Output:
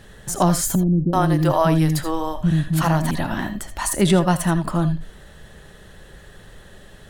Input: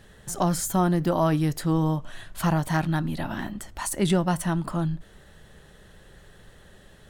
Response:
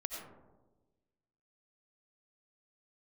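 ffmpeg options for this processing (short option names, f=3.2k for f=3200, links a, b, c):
-filter_complex "[0:a]asettb=1/sr,asplit=3[a][b][c];[a]atrim=end=0.754[d];[b]atrim=start=0.75:end=3.11,asetpts=PTS-STARTPTS,afade=t=in:d=0.004:c=qsin,afade=t=out:st=2.356:d=0.004:c=qsin,acrossover=split=350[e][f];[f]adelay=380[g];[e][g]amix=inputs=2:normalize=0,atrim=end_sample=104076[h];[c]atrim=start=3.106[i];[d][h]acrossfade=d=0.004:c1=hsin:c2=qsin[j];[j][i]acrossfade=d=0.004:c1=qsin:c2=hsin[k];[1:a]atrim=start_sample=2205,atrim=end_sample=3528,asetrate=40131,aresample=44100[l];[k][l]afir=irnorm=-1:irlink=0,volume=8.5dB"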